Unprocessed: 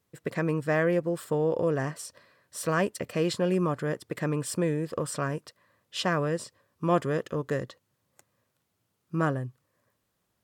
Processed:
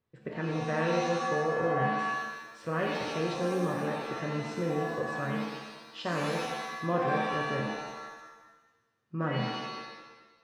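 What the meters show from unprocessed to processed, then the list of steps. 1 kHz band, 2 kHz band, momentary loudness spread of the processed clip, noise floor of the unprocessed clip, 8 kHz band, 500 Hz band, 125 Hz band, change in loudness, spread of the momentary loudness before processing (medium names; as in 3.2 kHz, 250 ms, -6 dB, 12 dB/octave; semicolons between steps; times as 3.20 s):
+3.0 dB, +1.0 dB, 13 LU, -78 dBFS, -8.5 dB, -3.0 dB, -4.0 dB, -2.5 dB, 10 LU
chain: distance through air 200 m; pitch-shifted reverb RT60 1.1 s, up +7 st, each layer -2 dB, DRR 0.5 dB; trim -6.5 dB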